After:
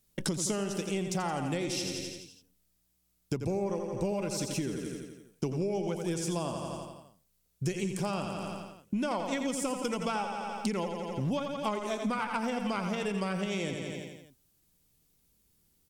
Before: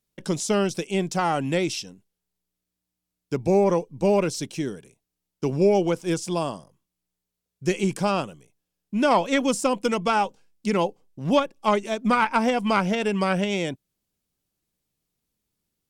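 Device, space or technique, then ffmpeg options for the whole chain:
ASMR close-microphone chain: -af "lowshelf=frequency=160:gain=7,aecho=1:1:85|170|255|340|425|510|595:0.398|0.235|0.139|0.0818|0.0482|0.0285|0.0168,acompressor=threshold=-34dB:ratio=8,highshelf=frequency=6200:gain=7.5,volume=4dB"

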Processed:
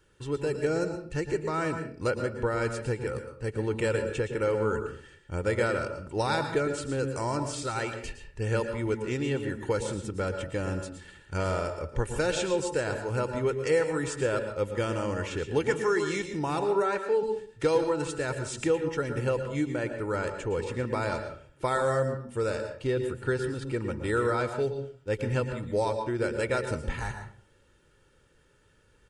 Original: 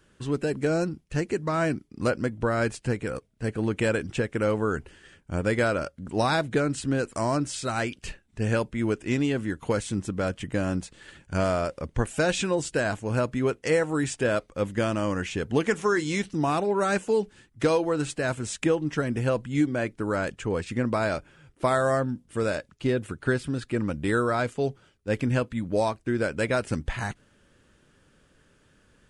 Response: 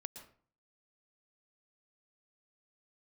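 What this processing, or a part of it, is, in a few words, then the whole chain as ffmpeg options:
microphone above a desk: -filter_complex "[0:a]aecho=1:1:2.2:0.53[link_01];[1:a]atrim=start_sample=2205[link_02];[link_01][link_02]afir=irnorm=-1:irlink=0,asettb=1/sr,asplit=3[link_03][link_04][link_05];[link_03]atrim=end=16.824[link_06];[link_04]atrim=start=16.82:end=17.23,asetpts=PTS-STARTPTS,afade=type=in:duration=0.004:curve=qsin,afade=type=out:start_time=0.406:duration=0.004:curve=qsin,bass=frequency=250:gain=-10,treble=frequency=4000:gain=-11[link_07];[link_05]atrim=start=17.226[link_08];[link_06][link_07]acrossfade=duration=0.004:curve1=hsin:curve2=qsin[link_09];[link_09][link_08]acrossfade=duration=0.004:curve1=qsin:curve2=hsin"

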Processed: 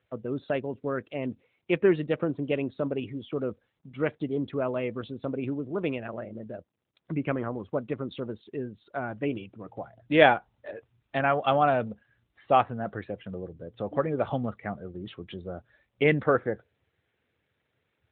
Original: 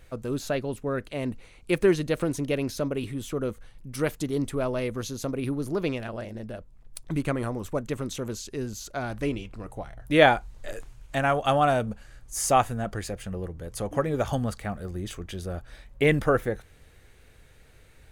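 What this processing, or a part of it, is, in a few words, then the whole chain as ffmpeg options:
mobile call with aggressive noise cancelling: -af "highpass=frequency=150:poles=1,afftdn=noise_reduction=15:noise_floor=-43" -ar 8000 -c:a libopencore_amrnb -b:a 12200

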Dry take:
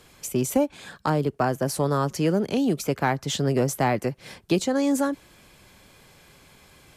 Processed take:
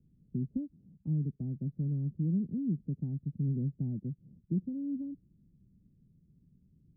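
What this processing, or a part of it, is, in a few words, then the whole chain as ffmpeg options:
the neighbour's flat through the wall: -af "lowpass=frequency=250:width=0.5412,lowpass=frequency=250:width=1.3066,equalizer=frequency=170:width_type=o:width=0.99:gain=6.5,volume=-9dB"

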